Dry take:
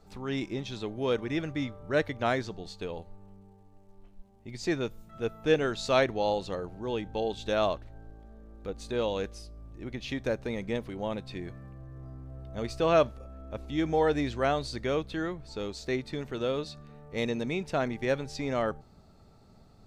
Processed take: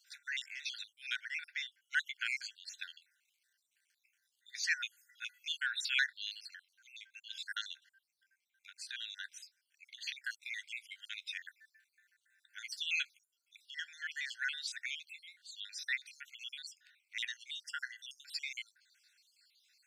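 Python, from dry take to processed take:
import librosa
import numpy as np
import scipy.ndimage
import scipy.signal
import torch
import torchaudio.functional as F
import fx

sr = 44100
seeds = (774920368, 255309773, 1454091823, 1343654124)

y = fx.spec_dropout(x, sr, seeds[0], share_pct=55)
y = fx.rider(y, sr, range_db=4, speed_s=2.0)
y = fx.brickwall_highpass(y, sr, low_hz=1400.0)
y = y * 10.0 ** (3.0 / 20.0)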